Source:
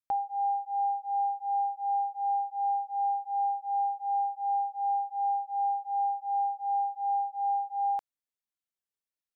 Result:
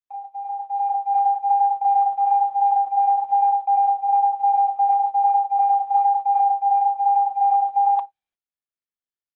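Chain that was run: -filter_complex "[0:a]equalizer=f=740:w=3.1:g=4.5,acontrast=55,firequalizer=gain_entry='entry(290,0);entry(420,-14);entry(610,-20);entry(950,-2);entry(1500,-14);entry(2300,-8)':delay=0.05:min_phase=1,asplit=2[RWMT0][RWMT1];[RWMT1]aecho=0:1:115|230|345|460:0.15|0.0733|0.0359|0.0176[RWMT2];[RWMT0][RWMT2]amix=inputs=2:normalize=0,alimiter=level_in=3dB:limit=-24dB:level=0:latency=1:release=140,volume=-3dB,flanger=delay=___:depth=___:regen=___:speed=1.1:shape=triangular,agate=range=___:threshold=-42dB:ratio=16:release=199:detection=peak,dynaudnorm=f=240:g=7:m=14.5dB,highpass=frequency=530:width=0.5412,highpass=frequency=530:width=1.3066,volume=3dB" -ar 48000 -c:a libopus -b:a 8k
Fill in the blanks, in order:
4.1, 5.5, -62, -57dB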